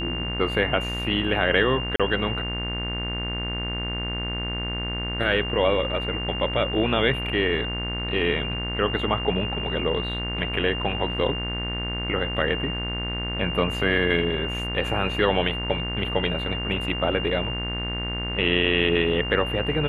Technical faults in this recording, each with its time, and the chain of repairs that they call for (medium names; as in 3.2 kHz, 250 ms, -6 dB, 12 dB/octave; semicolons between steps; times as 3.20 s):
buzz 60 Hz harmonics 38 -31 dBFS
whine 2.8 kHz -30 dBFS
1.96–2.00 s: dropout 36 ms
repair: de-hum 60 Hz, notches 38; band-stop 2.8 kHz, Q 30; interpolate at 1.96 s, 36 ms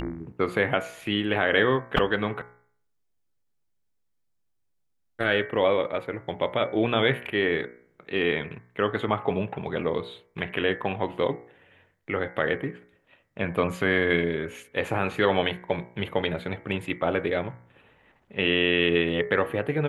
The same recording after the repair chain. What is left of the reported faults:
nothing left